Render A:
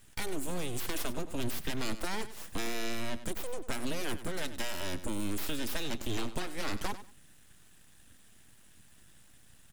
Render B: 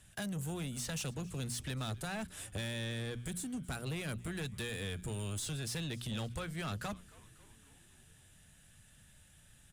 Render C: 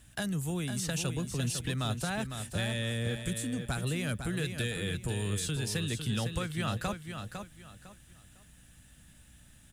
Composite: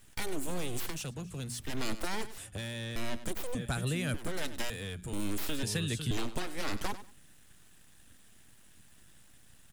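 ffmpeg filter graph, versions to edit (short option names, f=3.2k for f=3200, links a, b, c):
-filter_complex "[1:a]asplit=3[a][b][c];[2:a]asplit=2[d][e];[0:a]asplit=6[f][g][h][i][j][k];[f]atrim=end=1.01[l];[a]atrim=start=0.85:end=1.75[m];[g]atrim=start=1.59:end=2.382[n];[b]atrim=start=2.378:end=2.962[o];[h]atrim=start=2.958:end=3.552[p];[d]atrim=start=3.548:end=4.142[q];[i]atrim=start=4.138:end=4.702[r];[c]atrim=start=4.698:end=5.132[s];[j]atrim=start=5.128:end=5.632[t];[e]atrim=start=5.628:end=6.112[u];[k]atrim=start=6.108[v];[l][m]acrossfade=d=0.16:c1=tri:c2=tri[w];[w][n]acrossfade=d=0.16:c1=tri:c2=tri[x];[x][o]acrossfade=d=0.004:c1=hsin:c2=hsin[y];[y][p]acrossfade=d=0.004:c1=hsin:c2=hsin[z];[z][q]acrossfade=d=0.004:c1=hsin:c2=hsin[aa];[aa][r]acrossfade=d=0.004:c1=hsin:c2=hsin[ab];[ab][s]acrossfade=d=0.004:c1=hsin:c2=hsin[ac];[ac][t]acrossfade=d=0.004:c1=hsin:c2=hsin[ad];[ad][u]acrossfade=d=0.004:c1=hsin:c2=hsin[ae];[ae][v]acrossfade=d=0.004:c1=hsin:c2=hsin"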